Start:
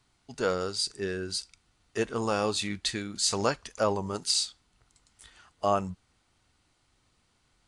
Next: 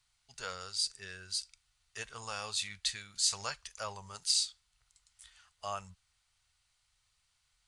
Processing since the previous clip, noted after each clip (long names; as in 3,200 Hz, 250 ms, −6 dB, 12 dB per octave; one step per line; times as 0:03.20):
guitar amp tone stack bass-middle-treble 10-0-10
level −1.5 dB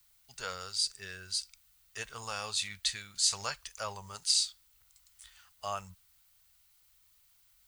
background noise violet −69 dBFS
level +2 dB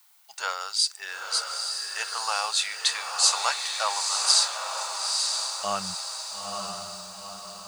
high-pass filter sweep 820 Hz → 69 Hz, 0:04.28–0:06.76
feedback delay with all-pass diffusion 907 ms, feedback 50%, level −3.5 dB
level +7 dB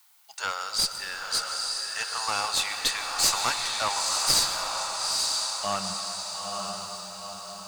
asymmetric clip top −23.5 dBFS
on a send at −7.5 dB: convolution reverb RT60 3.8 s, pre-delay 109 ms